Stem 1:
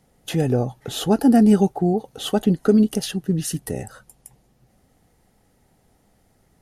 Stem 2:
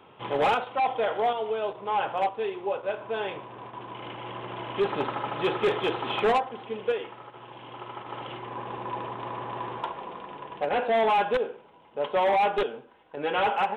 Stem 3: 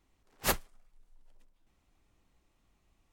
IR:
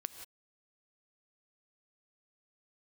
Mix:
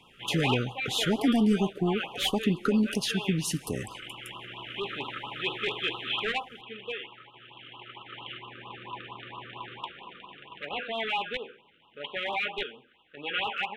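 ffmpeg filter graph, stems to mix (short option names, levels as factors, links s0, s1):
-filter_complex "[0:a]asplit=2[s0][s1];[s1]highpass=f=720:p=1,volume=4.47,asoftclip=type=tanh:threshold=0.596[s2];[s0][s2]amix=inputs=2:normalize=0,lowpass=f=2100:p=1,volume=0.501,acompressor=threshold=0.0891:ratio=2,volume=0.708,asplit=2[s3][s4];[s4]volume=0.316[s5];[1:a]equalizer=f=2700:w=0.44:g=11.5,volume=0.447[s6];[2:a]adelay=1750,volume=0.224[s7];[3:a]atrim=start_sample=2205[s8];[s5][s8]afir=irnorm=-1:irlink=0[s9];[s3][s6][s7][s9]amix=inputs=4:normalize=0,equalizer=f=590:w=1.2:g=-9.5,afftfilt=real='re*(1-between(b*sr/1024,800*pow(1900/800,0.5+0.5*sin(2*PI*4.4*pts/sr))/1.41,800*pow(1900/800,0.5+0.5*sin(2*PI*4.4*pts/sr))*1.41))':imag='im*(1-between(b*sr/1024,800*pow(1900/800,0.5+0.5*sin(2*PI*4.4*pts/sr))/1.41,800*pow(1900/800,0.5+0.5*sin(2*PI*4.4*pts/sr))*1.41))':win_size=1024:overlap=0.75"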